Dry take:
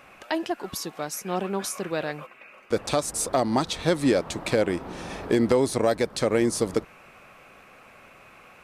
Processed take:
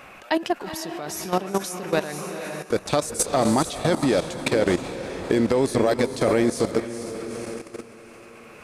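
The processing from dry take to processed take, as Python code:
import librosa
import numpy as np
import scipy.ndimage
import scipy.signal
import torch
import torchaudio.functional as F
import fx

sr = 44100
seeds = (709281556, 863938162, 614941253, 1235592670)

y = fx.echo_diffused(x, sr, ms=455, feedback_pct=45, wet_db=-7.0)
y = fx.level_steps(y, sr, step_db=13)
y = y * librosa.db_to_amplitude(7.0)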